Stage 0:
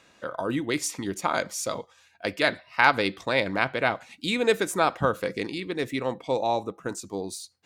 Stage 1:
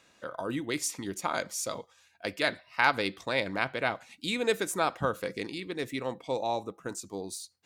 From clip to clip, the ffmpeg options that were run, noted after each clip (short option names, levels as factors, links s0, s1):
-af "highshelf=f=4800:g=5,volume=0.531"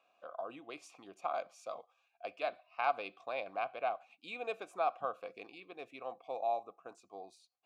-filter_complex "[0:a]asplit=3[s0][s1][s2];[s0]bandpass=f=730:t=q:w=8,volume=1[s3];[s1]bandpass=f=1090:t=q:w=8,volume=0.501[s4];[s2]bandpass=f=2440:t=q:w=8,volume=0.355[s5];[s3][s4][s5]amix=inputs=3:normalize=0,volume=1.33"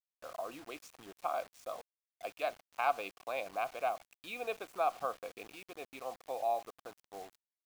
-af "acrusher=bits=8:mix=0:aa=0.000001,volume=1.12"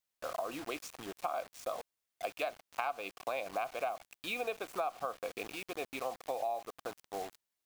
-af "acompressor=threshold=0.00891:ratio=6,volume=2.51"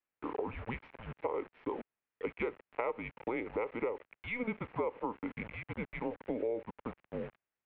-af "highpass=f=270:t=q:w=0.5412,highpass=f=270:t=q:w=1.307,lowpass=f=2800:t=q:w=0.5176,lowpass=f=2800:t=q:w=0.7071,lowpass=f=2800:t=q:w=1.932,afreqshift=-240,volume=1.12"